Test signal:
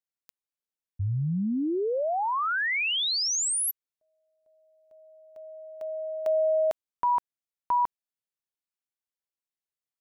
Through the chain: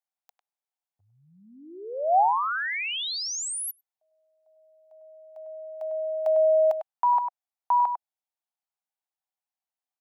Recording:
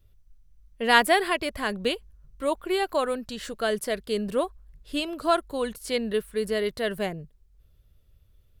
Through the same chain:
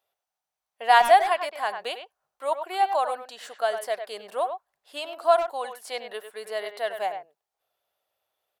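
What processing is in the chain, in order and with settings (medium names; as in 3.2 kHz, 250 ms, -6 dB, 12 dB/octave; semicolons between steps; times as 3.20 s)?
resonant high-pass 760 Hz, resonance Q 4.9; speakerphone echo 100 ms, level -8 dB; trim -4.5 dB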